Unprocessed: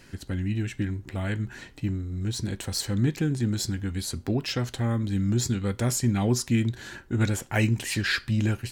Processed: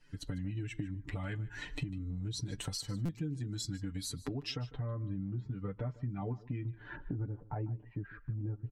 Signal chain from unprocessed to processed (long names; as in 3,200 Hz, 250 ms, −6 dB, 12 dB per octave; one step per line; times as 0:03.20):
spectral dynamics exaggerated over time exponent 1.5
camcorder AGC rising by 43 dB per second
Bessel low-pass filter 9,600 Hz, order 4, from 0:04.55 1,500 Hz, from 0:06.95 670 Hz
comb filter 6.8 ms, depth 84%
downward compressor 3 to 1, threshold −35 dBFS, peak gain reduction 14 dB
single-tap delay 150 ms −19 dB
buffer that repeats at 0:03.05, samples 256, times 6
level −3 dB